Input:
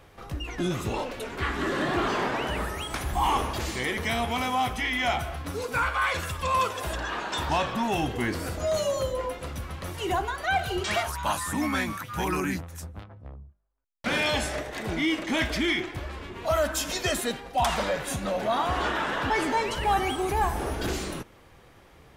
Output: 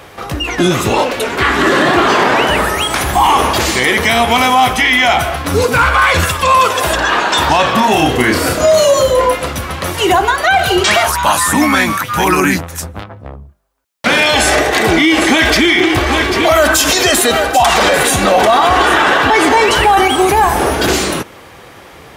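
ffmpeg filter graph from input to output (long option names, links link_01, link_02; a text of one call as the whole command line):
ffmpeg -i in.wav -filter_complex "[0:a]asettb=1/sr,asplit=3[link_01][link_02][link_03];[link_01]atrim=end=5.514[link_04];[link_02]atrim=start=5.51:end=6.25,asetpts=PTS-STARTPTS,afade=type=in:duration=0.004:curve=qsin,afade=type=out:start_time=0.736:duration=0.004:curve=qsin,equalizer=frequency=96:width=0.48:gain=11,asoftclip=type=hard:threshold=-18.5dB[link_05];[link_03]atrim=start=6.246[link_06];[link_04][link_05]acrossfade=duration=0.004:curve1=hsin:curve2=qsin[link_07];[link_07][link_06]acrossfade=duration=0.004:curve1=qsin:curve2=hsin,asettb=1/sr,asplit=3[link_08][link_09][link_10];[link_08]atrim=end=7.724[link_11];[link_09]atrim=start=7.72:end=9.42,asetpts=PTS-STARTPTS,afade=type=in:duration=0.004:curve=qsin,afade=type=out:start_time=1.696:duration=0.004:curve=qsin,bandreject=frequency=820:width=23,asplit=2[link_12][link_13];[link_13]adelay=32,volume=-4dB[link_14];[link_12][link_14]amix=inputs=2:normalize=0,atrim=end_sample=74970[link_15];[link_10]atrim=start=9.416[link_16];[link_11][link_15]acrossfade=duration=0.004:curve1=hsin:curve2=qsin[link_17];[link_17][link_16]acrossfade=duration=0.004:curve1=qsin:curve2=hsin,asettb=1/sr,asplit=3[link_18][link_19][link_20];[link_18]atrim=end=14.324[link_21];[link_19]atrim=start=14.32:end=20.08,asetpts=PTS-STARTPTS,afade=type=in:duration=0.004:curve=qsin,afade=type=out:start_time=5.756:duration=0.004:curve=qsin,aecho=1:1:2.6:0.32,atrim=end_sample=254016,acontrast=29,aecho=1:1:792:0.237,atrim=end_sample=254016[link_22];[link_20]atrim=start=20.076[link_23];[link_21][link_22]acrossfade=duration=0.004:curve1=hsin:curve2=qsin[link_24];[link_24][link_23]acrossfade=duration=0.004:curve1=qsin:curve2=hsin,highpass=56,lowshelf=frequency=230:gain=-8,alimiter=level_in=20.5dB:limit=-1dB:release=50:level=0:latency=1,volume=-1dB" out.wav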